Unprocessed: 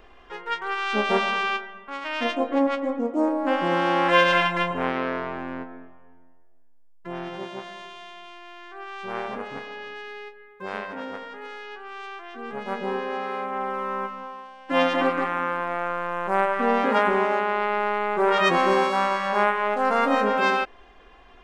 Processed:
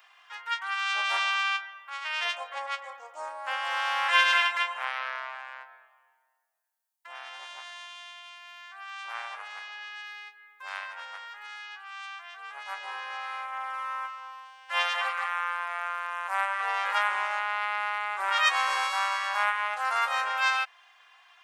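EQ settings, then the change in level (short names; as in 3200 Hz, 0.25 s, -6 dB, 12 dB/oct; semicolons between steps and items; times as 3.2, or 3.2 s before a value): Bessel high-pass 1300 Hz, order 6; high shelf 6700 Hz +8 dB; 0.0 dB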